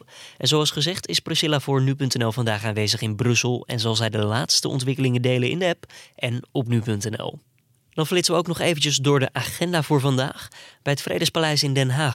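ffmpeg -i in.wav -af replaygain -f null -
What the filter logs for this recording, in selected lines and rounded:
track_gain = +1.3 dB
track_peak = 0.332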